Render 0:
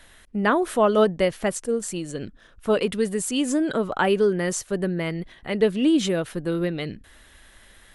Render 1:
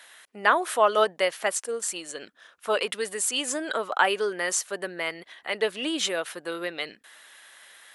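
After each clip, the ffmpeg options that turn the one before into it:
ffmpeg -i in.wav -af "highpass=740,volume=3dB" out.wav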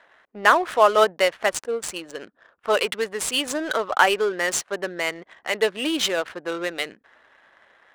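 ffmpeg -i in.wav -af "adynamicsmooth=sensitivity=7.5:basefreq=930,volume=4.5dB" out.wav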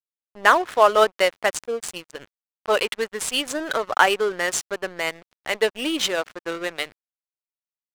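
ffmpeg -i in.wav -af "aeval=exprs='sgn(val(0))*max(abs(val(0))-0.0133,0)':channel_layout=same,volume=1dB" out.wav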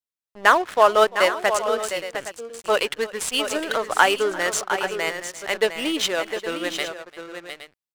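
ffmpeg -i in.wav -af "aecho=1:1:344|706|816:0.1|0.355|0.2" out.wav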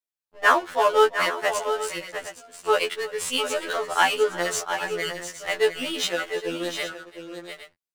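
ffmpeg -i in.wav -af "afftfilt=real='re*2*eq(mod(b,4),0)':imag='im*2*eq(mod(b,4),0)':win_size=2048:overlap=0.75" out.wav

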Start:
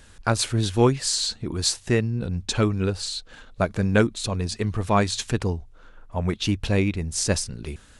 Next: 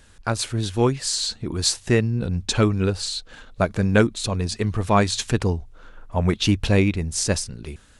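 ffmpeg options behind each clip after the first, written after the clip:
ffmpeg -i in.wav -af "dynaudnorm=framelen=210:gausssize=13:maxgain=11.5dB,volume=-2dB" out.wav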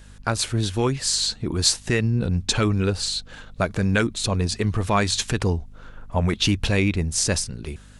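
ffmpeg -i in.wav -filter_complex "[0:a]acrossover=split=1300[link_01][link_02];[link_01]alimiter=limit=-15dB:level=0:latency=1[link_03];[link_03][link_02]amix=inputs=2:normalize=0,aeval=exprs='val(0)+0.00398*(sin(2*PI*50*n/s)+sin(2*PI*2*50*n/s)/2+sin(2*PI*3*50*n/s)/3+sin(2*PI*4*50*n/s)/4+sin(2*PI*5*50*n/s)/5)':channel_layout=same,volume=2dB" out.wav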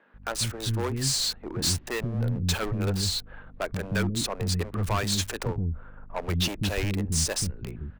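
ffmpeg -i in.wav -filter_complex "[0:a]acrossover=split=2100[link_01][link_02];[link_02]acrusher=bits=5:mix=0:aa=0.000001[link_03];[link_01][link_03]amix=inputs=2:normalize=0,asoftclip=type=hard:threshold=-20dB,acrossover=split=300[link_04][link_05];[link_04]adelay=140[link_06];[link_06][link_05]amix=inputs=2:normalize=0,volume=-2.5dB" out.wav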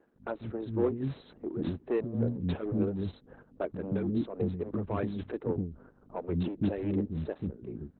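ffmpeg -i in.wav -af "bandpass=frequency=320:width_type=q:width=1.4:csg=0,tremolo=f=3.6:d=0.6,volume=7dB" -ar 48000 -c:a libopus -b:a 8k out.opus

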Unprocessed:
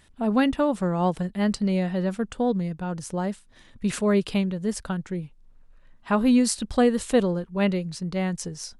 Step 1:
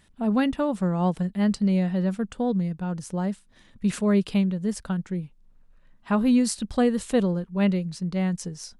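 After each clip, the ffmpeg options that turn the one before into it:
ffmpeg -i in.wav -af "equalizer=frequency=190:width=2.4:gain=5.5,volume=-3dB" out.wav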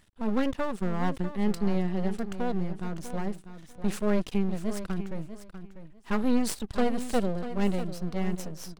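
ffmpeg -i in.wav -af "aeval=exprs='max(val(0),0)':channel_layout=same,aecho=1:1:645|1290:0.266|0.0506" out.wav

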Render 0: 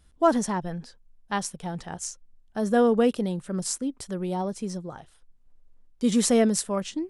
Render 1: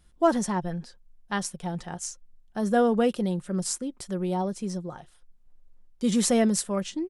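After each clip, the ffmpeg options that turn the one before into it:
ffmpeg -i in.wav -af "aecho=1:1:5.6:0.33,volume=-1dB" out.wav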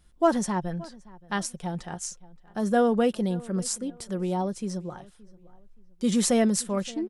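ffmpeg -i in.wav -filter_complex "[0:a]asplit=2[link_01][link_02];[link_02]adelay=573,lowpass=frequency=2900:poles=1,volume=-21.5dB,asplit=2[link_03][link_04];[link_04]adelay=573,lowpass=frequency=2900:poles=1,volume=0.33[link_05];[link_01][link_03][link_05]amix=inputs=3:normalize=0" out.wav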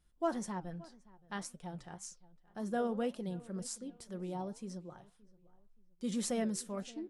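ffmpeg -i in.wav -af "flanger=delay=5.5:depth=6.8:regen=-84:speed=1.9:shape=triangular,volume=-8dB" out.wav

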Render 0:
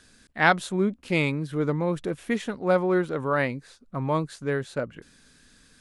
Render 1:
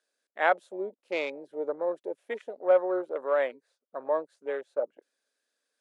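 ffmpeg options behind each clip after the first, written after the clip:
ffmpeg -i in.wav -af "afwtdn=0.0251,highpass=frequency=370:width=0.5412,highpass=frequency=370:width=1.3066,equalizer=frequency=590:width_type=o:width=0.67:gain=10.5,volume=-7.5dB" out.wav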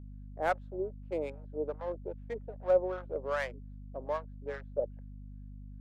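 ffmpeg -i in.wav -filter_complex "[0:a]adynamicsmooth=sensitivity=5.5:basefreq=1600,acrossover=split=730[link_01][link_02];[link_01]aeval=exprs='val(0)*(1-1/2+1/2*cos(2*PI*2.5*n/s))':channel_layout=same[link_03];[link_02]aeval=exprs='val(0)*(1-1/2-1/2*cos(2*PI*2.5*n/s))':channel_layout=same[link_04];[link_03][link_04]amix=inputs=2:normalize=0,aeval=exprs='val(0)+0.00562*(sin(2*PI*50*n/s)+sin(2*PI*2*50*n/s)/2+sin(2*PI*3*50*n/s)/3+sin(2*PI*4*50*n/s)/4+sin(2*PI*5*50*n/s)/5)':channel_layout=same" out.wav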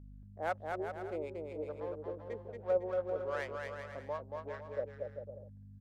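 ffmpeg -i in.wav -af "aecho=1:1:230|391|503.7|582.6|637.8:0.631|0.398|0.251|0.158|0.1,volume=-5.5dB" out.wav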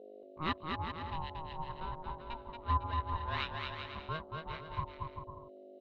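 ffmpeg -i in.wav -af "lowpass=frequency=3400:width_type=q:width=13,aeval=exprs='val(0)*sin(2*PI*470*n/s)':channel_layout=same,volume=2.5dB" out.wav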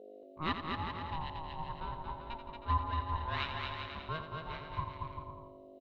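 ffmpeg -i in.wav -af "aecho=1:1:85|170|255|340|425|510:0.355|0.177|0.0887|0.0444|0.0222|0.0111" out.wav

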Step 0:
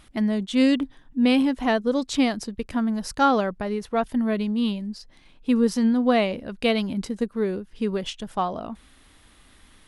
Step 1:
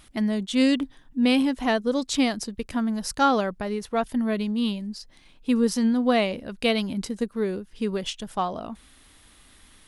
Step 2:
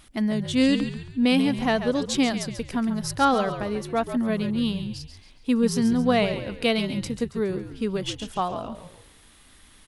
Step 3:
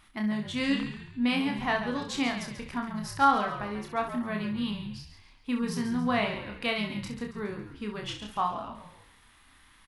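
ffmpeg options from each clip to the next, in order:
ffmpeg -i in.wav -af "highshelf=frequency=3900:gain=6.5,volume=-1.5dB" out.wav
ffmpeg -i in.wav -filter_complex "[0:a]asplit=5[link_01][link_02][link_03][link_04][link_05];[link_02]adelay=138,afreqshift=-59,volume=-10dB[link_06];[link_03]adelay=276,afreqshift=-118,volume=-17.5dB[link_07];[link_04]adelay=414,afreqshift=-177,volume=-25.1dB[link_08];[link_05]adelay=552,afreqshift=-236,volume=-32.6dB[link_09];[link_01][link_06][link_07][link_08][link_09]amix=inputs=5:normalize=0" out.wav
ffmpeg -i in.wav -af "equalizer=frequency=500:width_type=o:width=1:gain=-6,equalizer=frequency=1000:width_type=o:width=1:gain=8,equalizer=frequency=2000:width_type=o:width=1:gain=5,equalizer=frequency=8000:width_type=o:width=1:gain=-4,aecho=1:1:29|66:0.596|0.355,volume=-8.5dB" out.wav

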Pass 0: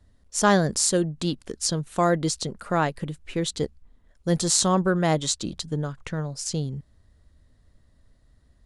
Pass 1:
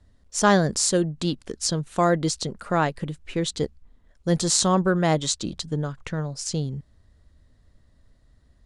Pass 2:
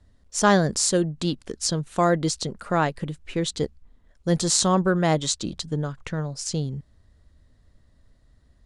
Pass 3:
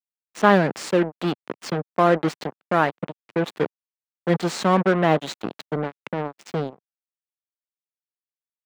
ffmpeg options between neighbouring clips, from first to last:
ffmpeg -i in.wav -af "lowpass=9300,volume=1dB" out.wav
ffmpeg -i in.wav -af anull out.wav
ffmpeg -i in.wav -filter_complex "[0:a]acrusher=bits=3:mix=0:aa=0.5,acrossover=split=150 3100:gain=0.0708 1 0.1[link_01][link_02][link_03];[link_01][link_02][link_03]amix=inputs=3:normalize=0,volume=3dB" out.wav

